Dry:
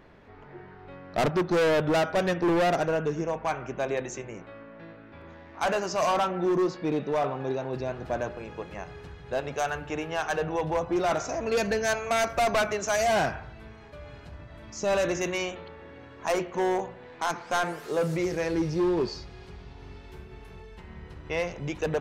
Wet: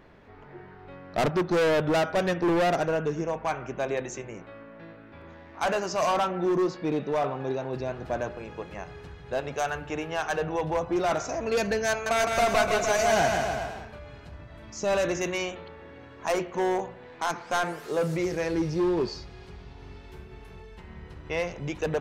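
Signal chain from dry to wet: 11.90–13.99 s: bouncing-ball echo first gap 160 ms, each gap 0.85×, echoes 5

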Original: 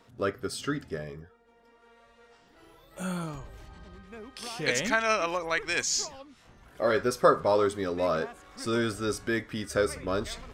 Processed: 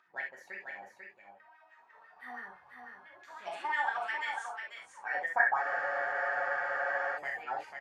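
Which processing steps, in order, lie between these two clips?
wah-wah 4.4 Hz 580–1400 Hz, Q 6.6; speed mistake 33 rpm record played at 45 rpm; gate with hold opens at -60 dBFS; upward compressor, threshold -57 dBFS; delay 493 ms -6 dB; reverberation, pre-delay 3 ms, DRR -0.5 dB; spectral freeze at 5.64 s, 1.53 s

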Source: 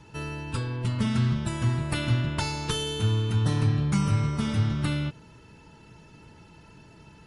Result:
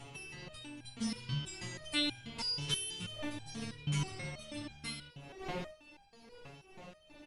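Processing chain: wind noise 630 Hz -37 dBFS; resonant high shelf 1.9 kHz +7.5 dB, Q 1.5; doubling 13 ms -13 dB; on a send: reverse echo 852 ms -12.5 dB; on the sum: resonator arpeggio 6.2 Hz 140–800 Hz

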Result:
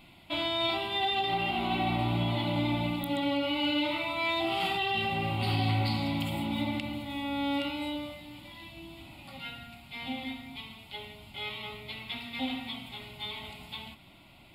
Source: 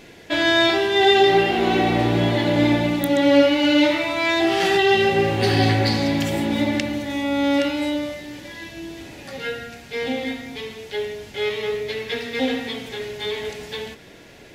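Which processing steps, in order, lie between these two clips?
peak limiter -10 dBFS, peak gain reduction 6 dB; static phaser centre 1.7 kHz, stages 6; trim -6 dB

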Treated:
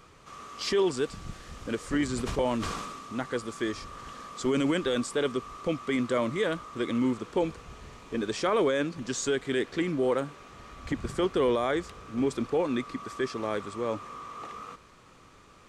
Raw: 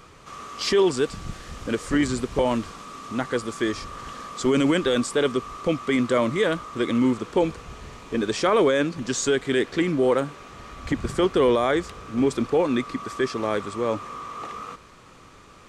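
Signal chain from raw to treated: 2.13–3.13 s: decay stretcher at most 34 dB/s; trim -6 dB

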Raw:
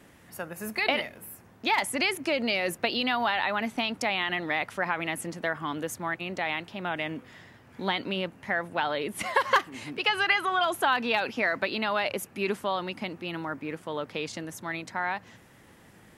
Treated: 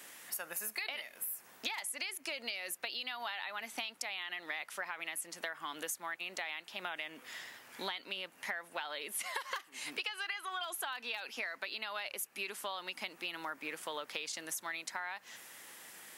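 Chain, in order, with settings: high-pass 400 Hz 6 dB/octave; tilt EQ +3.5 dB/octave; compression 16:1, threshold -37 dBFS, peak gain reduction 22.5 dB; trim +1 dB

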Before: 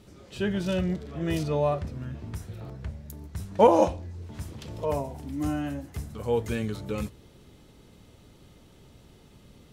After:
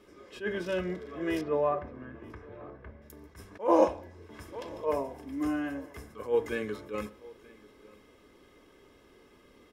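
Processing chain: 1.41–3.02 s: low-pass 2 kHz 12 dB/octave; delay 934 ms -23.5 dB; reverberation RT60 0.60 s, pre-delay 3 ms, DRR 16 dB; attacks held to a fixed rise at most 220 dB/s; trim -6.5 dB

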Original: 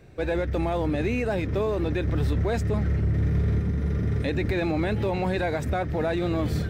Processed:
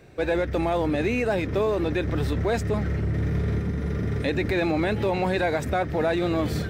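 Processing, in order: bass shelf 160 Hz -8 dB; trim +3.5 dB

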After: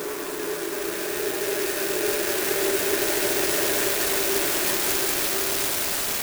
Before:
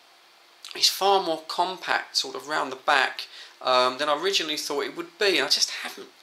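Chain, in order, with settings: Paulstretch 8×, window 1.00 s, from 4.93 s; sampling jitter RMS 0.082 ms

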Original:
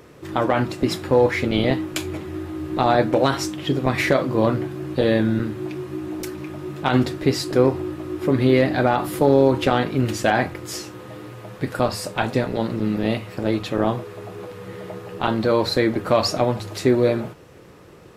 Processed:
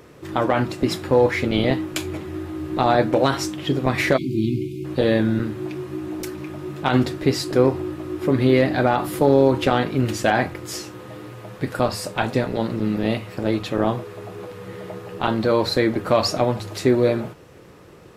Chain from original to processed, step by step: spectral selection erased 4.17–4.85 s, 390–2100 Hz

